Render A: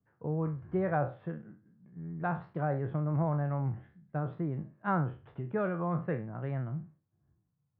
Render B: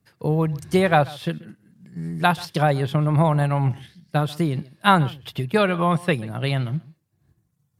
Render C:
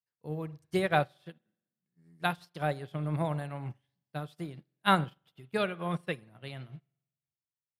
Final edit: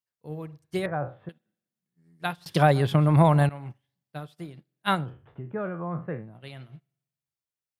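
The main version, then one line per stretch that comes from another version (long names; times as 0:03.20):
C
0:00.86–0:01.29: punch in from A
0:02.46–0:03.49: punch in from B
0:05.03–0:06.31: punch in from A, crossfade 0.24 s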